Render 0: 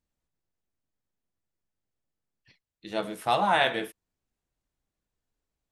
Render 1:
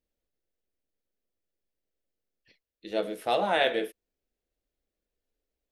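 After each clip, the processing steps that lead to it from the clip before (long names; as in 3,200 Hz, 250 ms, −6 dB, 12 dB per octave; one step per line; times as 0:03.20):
octave-band graphic EQ 125/500/1,000/8,000 Hz −12/+8/−10/−6 dB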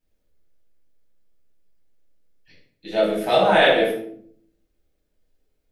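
rectangular room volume 900 cubic metres, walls furnished, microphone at 8.3 metres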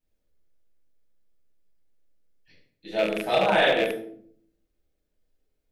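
loose part that buzzes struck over −29 dBFS, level −13 dBFS
level −5 dB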